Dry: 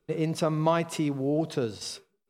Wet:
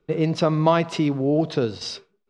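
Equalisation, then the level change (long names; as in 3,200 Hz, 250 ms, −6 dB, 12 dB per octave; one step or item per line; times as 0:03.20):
dynamic equaliser 4,500 Hz, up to +6 dB, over −50 dBFS, Q 1.4
high-frequency loss of the air 130 metres
+6.5 dB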